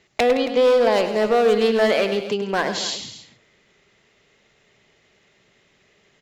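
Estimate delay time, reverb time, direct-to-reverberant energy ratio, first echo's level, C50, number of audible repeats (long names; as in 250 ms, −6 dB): 102 ms, no reverb audible, no reverb audible, −10.5 dB, no reverb audible, 3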